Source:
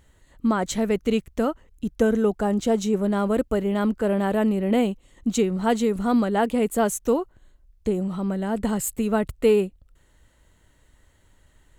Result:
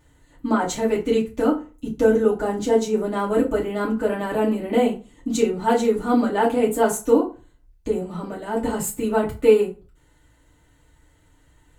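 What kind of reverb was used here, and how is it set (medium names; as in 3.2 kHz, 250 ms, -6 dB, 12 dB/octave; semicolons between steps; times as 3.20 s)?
FDN reverb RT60 0.33 s, low-frequency decay 1.1×, high-frequency decay 0.7×, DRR -6 dB; trim -5 dB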